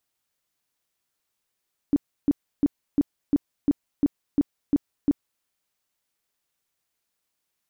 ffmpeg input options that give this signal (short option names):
-f lavfi -i "aevalsrc='0.178*sin(2*PI*286*mod(t,0.35))*lt(mod(t,0.35),9/286)':d=3.5:s=44100"